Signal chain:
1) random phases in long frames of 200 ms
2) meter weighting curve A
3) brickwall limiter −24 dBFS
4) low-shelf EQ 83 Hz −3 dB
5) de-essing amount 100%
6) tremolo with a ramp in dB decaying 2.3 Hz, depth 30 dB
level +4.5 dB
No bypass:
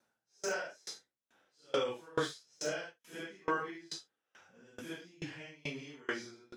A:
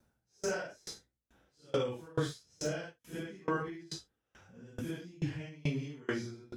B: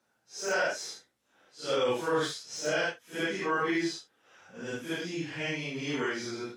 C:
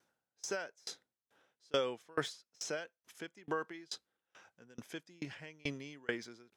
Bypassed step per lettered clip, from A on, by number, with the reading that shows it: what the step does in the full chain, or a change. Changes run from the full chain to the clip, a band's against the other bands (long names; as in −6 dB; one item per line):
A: 2, 125 Hz band +13.5 dB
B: 6, change in momentary loudness spread +1 LU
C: 1, 1 kHz band −3.0 dB